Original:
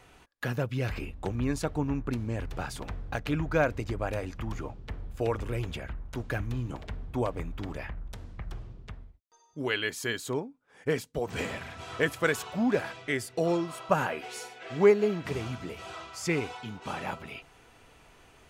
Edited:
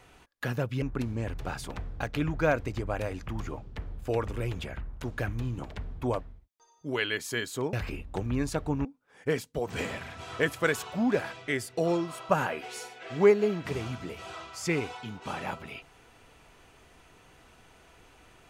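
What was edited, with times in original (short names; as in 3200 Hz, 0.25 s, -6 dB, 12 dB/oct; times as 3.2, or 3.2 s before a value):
0.82–1.94 move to 10.45
7.33–8.93 cut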